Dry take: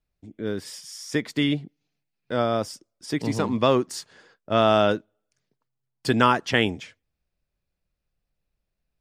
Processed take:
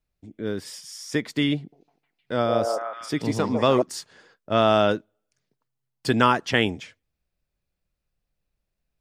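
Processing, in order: 1.57–3.82 s: repeats whose band climbs or falls 154 ms, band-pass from 570 Hz, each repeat 0.7 oct, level -0.5 dB

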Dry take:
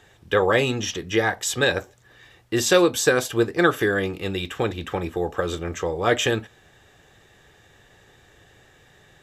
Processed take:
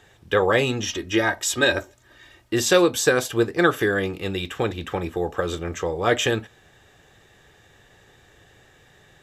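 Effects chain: 0.89–2.54 s: comb 3.2 ms, depth 59%

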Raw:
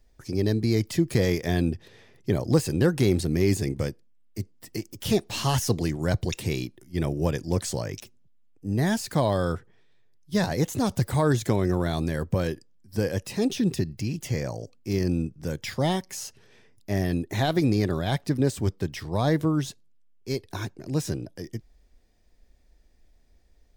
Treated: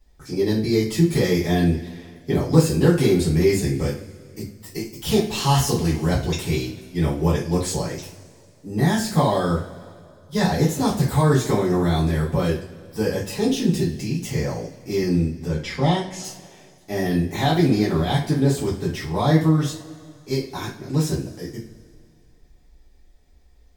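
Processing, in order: 15.46–16.24 s: distance through air 65 m; two-slope reverb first 0.34 s, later 2.3 s, from -21 dB, DRR -9 dB; trim -4.5 dB

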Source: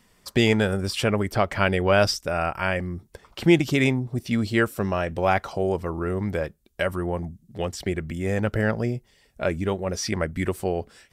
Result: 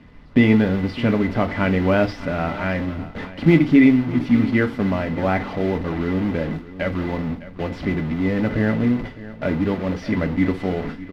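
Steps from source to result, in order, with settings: one-bit delta coder 64 kbps, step -25 dBFS; gate with hold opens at -26 dBFS; peaking EQ 180 Hz +7 dB 0.35 oct; modulation noise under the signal 15 dB; small resonant body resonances 250/2000 Hz, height 13 dB, ringing for 65 ms; added noise brown -46 dBFS; distance through air 340 m; delay 608 ms -16.5 dB; FDN reverb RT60 0.31 s, low-frequency decay 1.05×, high-frequency decay 1×, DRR 6.5 dB

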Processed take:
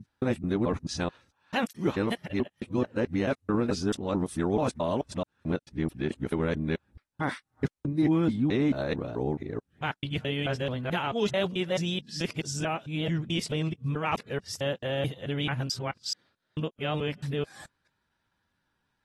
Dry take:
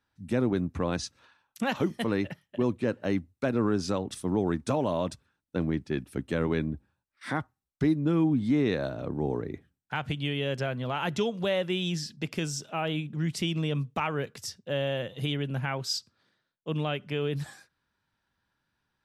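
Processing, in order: time reversed locally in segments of 218 ms; AAC 32 kbps 48 kHz

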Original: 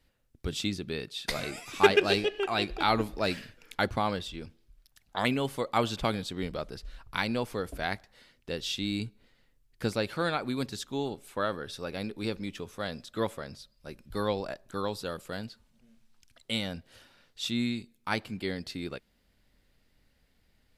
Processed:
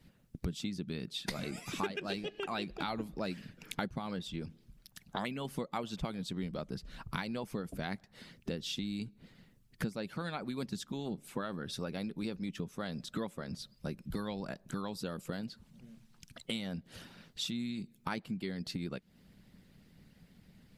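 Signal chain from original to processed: harmonic-percussive split harmonic -11 dB; peaking EQ 180 Hz +15 dB 1.1 oct; compression 5:1, threshold -44 dBFS, peak gain reduction 25.5 dB; trim +7.5 dB

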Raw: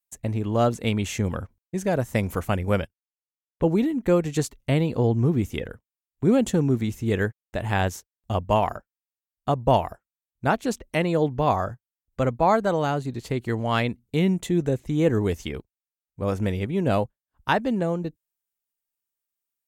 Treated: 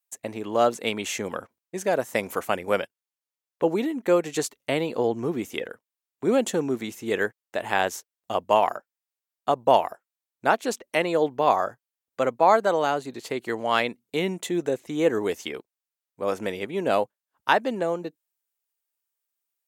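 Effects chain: high-pass 380 Hz 12 dB/octave; trim +2.5 dB

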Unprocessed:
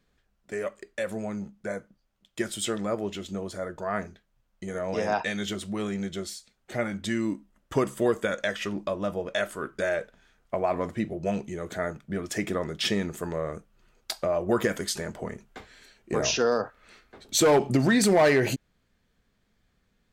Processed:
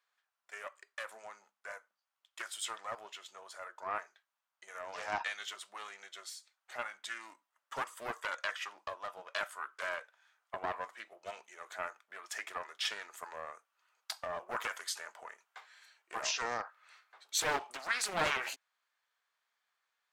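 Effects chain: ladder high-pass 790 Hz, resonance 35%; loudspeaker Doppler distortion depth 0.36 ms

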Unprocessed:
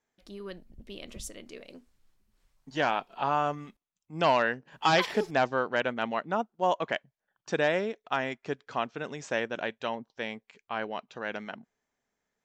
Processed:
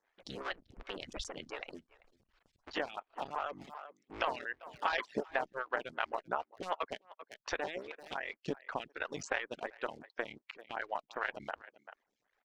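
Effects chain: cycle switcher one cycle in 3, muted; low-pass 5.5 kHz 12 dB/octave; treble shelf 4.3 kHz -7.5 dB; reverb removal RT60 0.54 s; tilt shelf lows -5.5 dB, about 730 Hz; speakerphone echo 390 ms, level -22 dB; harmonic-percussive split harmonic -12 dB; compression 4:1, threshold -44 dBFS, peak gain reduction 18.5 dB; lamp-driven phase shifter 2.7 Hz; trim +11.5 dB

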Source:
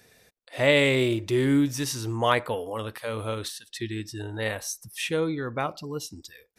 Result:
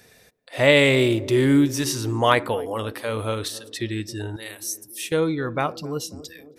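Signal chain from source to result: 4.36–5.12 s: pre-emphasis filter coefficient 0.9; band-passed feedback delay 271 ms, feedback 66%, band-pass 320 Hz, level -16 dB; trim +4.5 dB

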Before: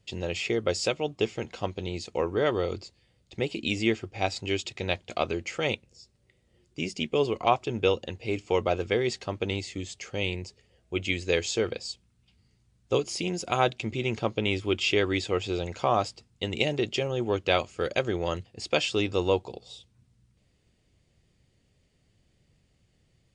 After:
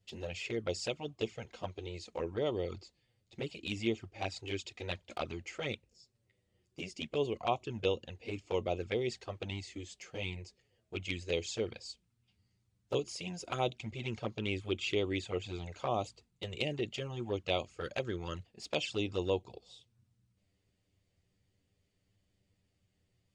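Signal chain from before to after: 14.42–16.98 s: band-stop 5.3 kHz, Q 8.1; touch-sensitive flanger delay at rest 10.6 ms, full sweep at -21.5 dBFS; trim -6.5 dB

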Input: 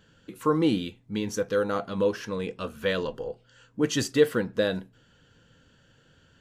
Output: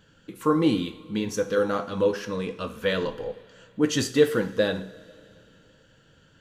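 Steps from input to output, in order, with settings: two-slope reverb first 0.49 s, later 2.9 s, from -16 dB, DRR 9 dB; flange 1.5 Hz, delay 0.8 ms, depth 6.2 ms, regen -74%; trim +5.5 dB

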